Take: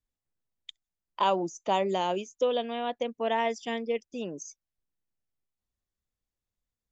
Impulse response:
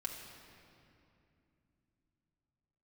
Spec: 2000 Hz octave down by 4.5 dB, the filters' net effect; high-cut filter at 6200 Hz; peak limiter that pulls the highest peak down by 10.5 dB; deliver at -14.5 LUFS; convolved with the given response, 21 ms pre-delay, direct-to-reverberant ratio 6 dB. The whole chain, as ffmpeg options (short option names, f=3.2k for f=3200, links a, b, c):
-filter_complex "[0:a]lowpass=6.2k,equalizer=f=2k:t=o:g=-5.5,alimiter=level_in=1.5dB:limit=-24dB:level=0:latency=1,volume=-1.5dB,asplit=2[a][b];[1:a]atrim=start_sample=2205,adelay=21[c];[b][c]afir=irnorm=-1:irlink=0,volume=-5.5dB[d];[a][d]amix=inputs=2:normalize=0,volume=20dB"